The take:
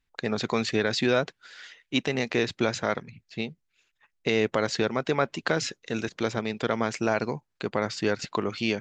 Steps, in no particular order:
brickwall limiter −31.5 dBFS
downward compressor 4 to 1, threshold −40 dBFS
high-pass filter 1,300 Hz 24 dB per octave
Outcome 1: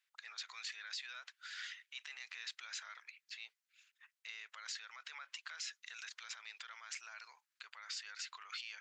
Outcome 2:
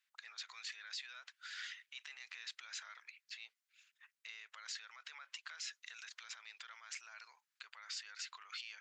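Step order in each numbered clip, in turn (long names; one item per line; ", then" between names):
brickwall limiter, then high-pass filter, then downward compressor
brickwall limiter, then downward compressor, then high-pass filter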